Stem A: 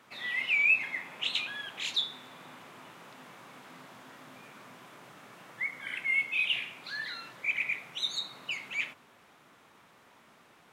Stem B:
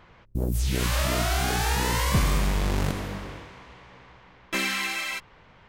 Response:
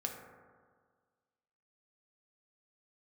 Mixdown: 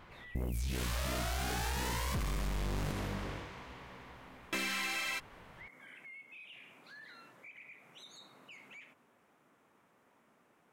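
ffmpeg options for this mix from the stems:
-filter_complex "[0:a]equalizer=f=250:t=o:w=1:g=4,equalizer=f=500:t=o:w=1:g=3,equalizer=f=4000:t=o:w=1:g=-8,acompressor=threshold=0.0141:ratio=6,alimiter=level_in=3.76:limit=0.0631:level=0:latency=1:release=11,volume=0.266,volume=0.335[s0];[1:a]volume=0.794[s1];[s0][s1]amix=inputs=2:normalize=0,aeval=exprs='(tanh(17.8*val(0)+0.25)-tanh(0.25))/17.8':c=same,acompressor=threshold=0.0224:ratio=5"

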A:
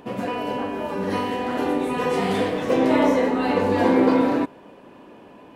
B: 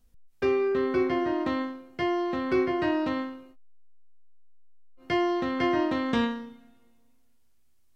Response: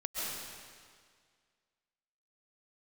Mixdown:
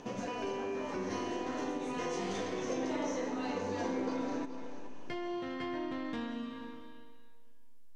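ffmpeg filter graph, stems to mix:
-filter_complex "[0:a]lowpass=f=6200:t=q:w=7.7,volume=0.562,asplit=3[s0][s1][s2];[s1]volume=0.0944[s3];[s2]volume=0.119[s4];[1:a]asoftclip=type=tanh:threshold=0.0891,volume=0.447,asplit=2[s5][s6];[s6]volume=0.531[s7];[2:a]atrim=start_sample=2205[s8];[s3][s7]amix=inputs=2:normalize=0[s9];[s9][s8]afir=irnorm=-1:irlink=0[s10];[s4]aecho=0:1:427:1[s11];[s0][s5][s10][s11]amix=inputs=4:normalize=0,acompressor=threshold=0.0112:ratio=2.5"

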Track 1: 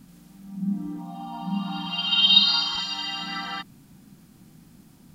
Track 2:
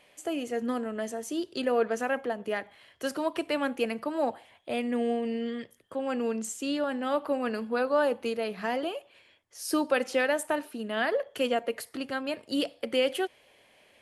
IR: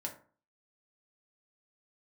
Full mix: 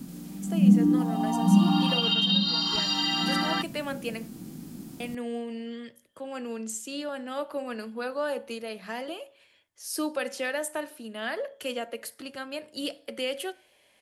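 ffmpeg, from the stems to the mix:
-filter_complex "[0:a]equalizer=f=310:w=0.67:g=12.5,volume=1.12[s0];[1:a]adelay=250,volume=0.422,asplit=3[s1][s2][s3];[s1]atrim=end=4.28,asetpts=PTS-STARTPTS,afade=t=out:st=4.276:d=0.004:c=hsin[s4];[s2]atrim=start=4.28:end=5,asetpts=PTS-STARTPTS,volume=0[s5];[s3]atrim=start=5,asetpts=PTS-STARTPTS,afade=t=in:d=0.004:c=hsin[s6];[s4][s5][s6]concat=n=3:v=0:a=1,asplit=2[s7][s8];[s8]volume=0.355[s9];[2:a]atrim=start_sample=2205[s10];[s9][s10]afir=irnorm=-1:irlink=0[s11];[s0][s7][s11]amix=inputs=3:normalize=0,highshelf=f=3200:g=8.5,acrossover=split=280[s12][s13];[s13]acompressor=threshold=0.0708:ratio=8[s14];[s12][s14]amix=inputs=2:normalize=0"

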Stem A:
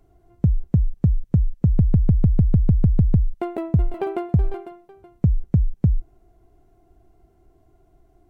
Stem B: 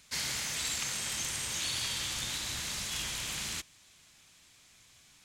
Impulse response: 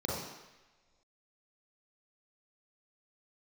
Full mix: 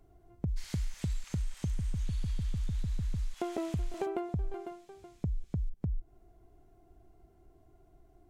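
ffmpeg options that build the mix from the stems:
-filter_complex "[0:a]alimiter=limit=0.158:level=0:latency=1:release=158,volume=0.631[s0];[1:a]highpass=640,adynamicequalizer=threshold=0.00251:dfrequency=2000:dqfactor=0.7:tfrequency=2000:tqfactor=0.7:attack=5:release=100:ratio=0.375:range=3:mode=cutabove:tftype=highshelf,adelay=450,volume=0.316[s1];[s0][s1]amix=inputs=2:normalize=0,acompressor=threshold=0.0316:ratio=6"

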